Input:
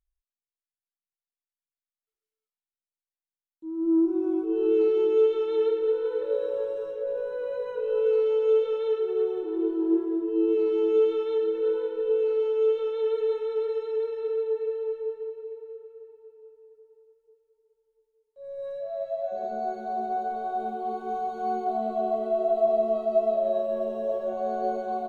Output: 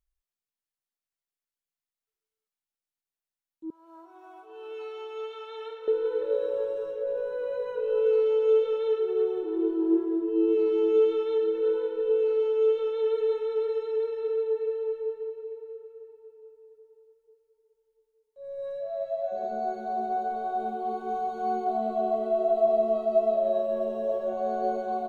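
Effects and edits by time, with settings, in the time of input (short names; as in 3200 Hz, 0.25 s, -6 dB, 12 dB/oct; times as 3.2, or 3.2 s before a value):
3.7–5.88 elliptic high-pass 570 Hz, stop band 60 dB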